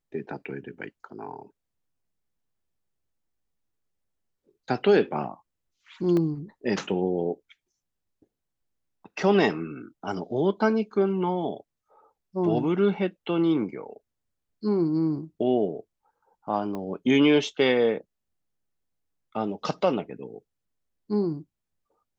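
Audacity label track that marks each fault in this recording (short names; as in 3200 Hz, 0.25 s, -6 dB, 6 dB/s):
6.170000	6.170000	gap 2.1 ms
16.750000	16.750000	pop -22 dBFS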